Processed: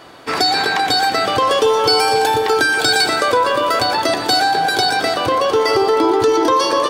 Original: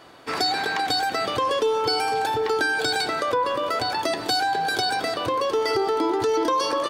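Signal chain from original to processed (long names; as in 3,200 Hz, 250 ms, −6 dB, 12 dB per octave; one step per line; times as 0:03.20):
0:01.47–0:03.85: high-shelf EQ 5,300 Hz +5.5 dB
echo with a time of its own for lows and highs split 2,900 Hz, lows 277 ms, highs 117 ms, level −10 dB
level +7.5 dB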